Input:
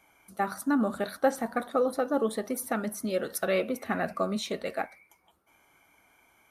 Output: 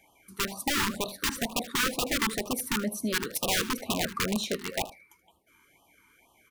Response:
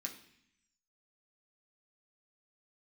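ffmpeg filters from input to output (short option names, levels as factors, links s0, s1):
-af "aeval=exprs='(mod(14.1*val(0)+1,2)-1)/14.1':c=same,aecho=1:1:78:0.15,afftfilt=real='re*(1-between(b*sr/1024,590*pow(1800/590,0.5+0.5*sin(2*PI*2.1*pts/sr))/1.41,590*pow(1800/590,0.5+0.5*sin(2*PI*2.1*pts/sr))*1.41))':imag='im*(1-between(b*sr/1024,590*pow(1800/590,0.5+0.5*sin(2*PI*2.1*pts/sr))/1.41,590*pow(1800/590,0.5+0.5*sin(2*PI*2.1*pts/sr))*1.41))':win_size=1024:overlap=0.75,volume=1.26"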